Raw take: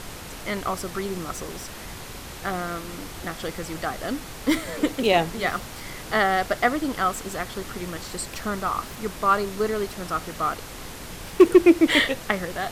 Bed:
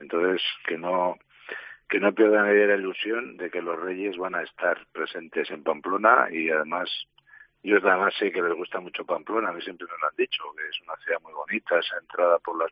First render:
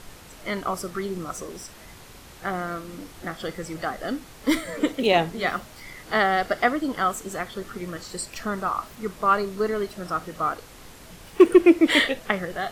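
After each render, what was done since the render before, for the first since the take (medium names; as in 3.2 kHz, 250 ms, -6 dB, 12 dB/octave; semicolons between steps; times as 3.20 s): noise print and reduce 8 dB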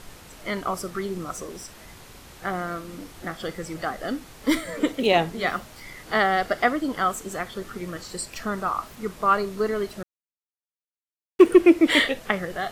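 10.03–11.39 s: mute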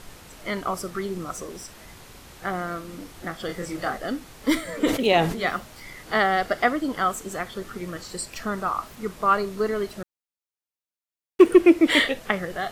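3.46–3.98 s: doubling 28 ms -3.5 dB; 4.76–5.39 s: decay stretcher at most 79 dB/s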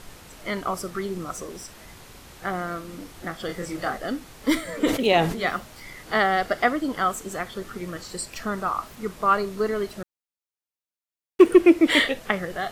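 no audible change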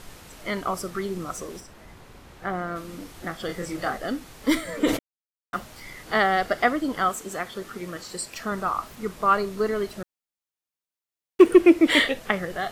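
1.59–2.75 s: treble shelf 2.2 kHz -> 4 kHz -10.5 dB; 4.99–5.53 s: mute; 7.09–8.52 s: bass shelf 99 Hz -11.5 dB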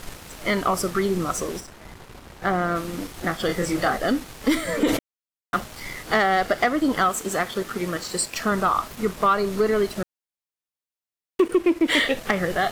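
compression 5:1, threshold -23 dBFS, peak gain reduction 13.5 dB; waveshaping leveller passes 2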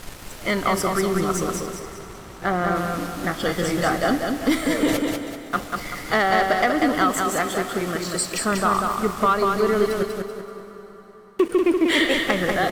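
on a send: feedback delay 192 ms, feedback 38%, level -4 dB; on the sum: plate-style reverb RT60 4.7 s, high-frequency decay 0.75×, pre-delay 110 ms, DRR 13 dB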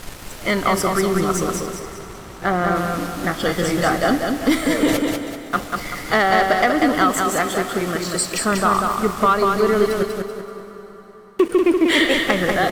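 trim +3 dB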